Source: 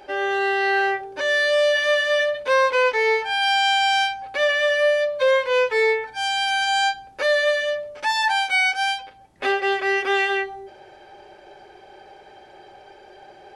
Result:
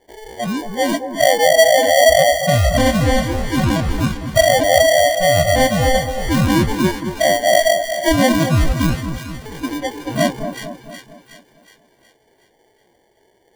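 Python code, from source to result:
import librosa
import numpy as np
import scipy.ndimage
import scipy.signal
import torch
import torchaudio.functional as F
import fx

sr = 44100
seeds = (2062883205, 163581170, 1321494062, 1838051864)

p1 = fx.pitch_ramps(x, sr, semitones=3.5, every_ms=463)
p2 = fx.high_shelf(p1, sr, hz=3200.0, db=5.0)
p3 = fx.over_compress(p2, sr, threshold_db=-22.0, ratio=-0.5)
p4 = p2 + (p3 * 10.0 ** (1.0 / 20.0))
p5 = scipy.signal.sosfilt(scipy.signal.cheby1(6, 3, 6000.0, 'lowpass', fs=sr, output='sos'), p4)
p6 = fx.sample_hold(p5, sr, seeds[0], rate_hz=1300.0, jitter_pct=0)
p7 = fx.noise_reduce_blind(p6, sr, reduce_db=24)
p8 = p7 + fx.echo_split(p7, sr, split_hz=1300.0, low_ms=227, high_ms=368, feedback_pct=52, wet_db=-8.5, dry=0)
y = p8 * 10.0 ** (5.0 / 20.0)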